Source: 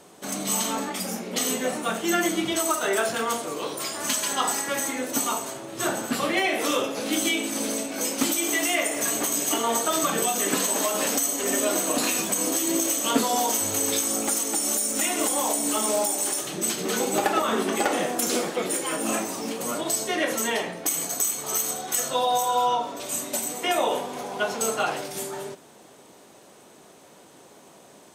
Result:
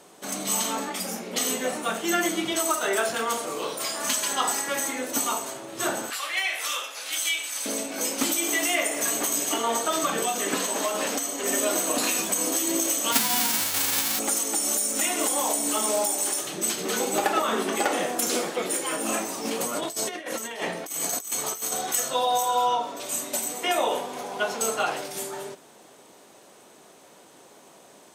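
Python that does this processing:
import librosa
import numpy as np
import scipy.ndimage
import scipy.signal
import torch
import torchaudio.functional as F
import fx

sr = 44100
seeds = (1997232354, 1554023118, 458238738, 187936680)

y = fx.doubler(x, sr, ms=32.0, db=-5.0, at=(3.34, 4.1))
y = fx.highpass(y, sr, hz=1300.0, slope=12, at=(6.1, 7.66))
y = fx.lowpass(y, sr, hz=fx.line((9.44, 8200.0), (11.43, 4400.0)), slope=6, at=(9.44, 11.43), fade=0.02)
y = fx.envelope_flatten(y, sr, power=0.1, at=(13.11, 14.18), fade=0.02)
y = fx.over_compress(y, sr, threshold_db=-30.0, ratio=-0.5, at=(19.44, 21.92), fade=0.02)
y = fx.low_shelf(y, sr, hz=220.0, db=-7.0)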